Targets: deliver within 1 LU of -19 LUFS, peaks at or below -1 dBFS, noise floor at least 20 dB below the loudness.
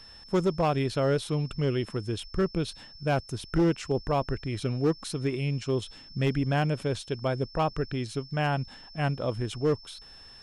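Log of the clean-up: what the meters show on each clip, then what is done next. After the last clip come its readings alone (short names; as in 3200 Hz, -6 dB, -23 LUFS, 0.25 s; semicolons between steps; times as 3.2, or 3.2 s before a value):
clipped 0.9%; flat tops at -18.5 dBFS; steady tone 5300 Hz; tone level -48 dBFS; loudness -29.5 LUFS; peak -18.5 dBFS; loudness target -19.0 LUFS
-> clip repair -18.5 dBFS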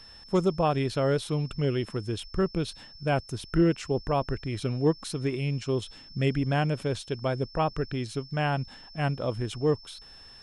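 clipped 0.0%; steady tone 5300 Hz; tone level -48 dBFS
-> notch 5300 Hz, Q 30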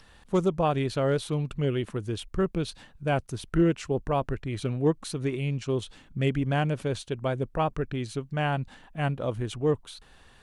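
steady tone none; loudness -29.0 LUFS; peak -12.5 dBFS; loudness target -19.0 LUFS
-> gain +10 dB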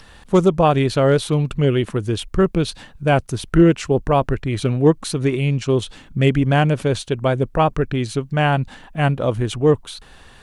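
loudness -19.0 LUFS; peak -2.5 dBFS; noise floor -46 dBFS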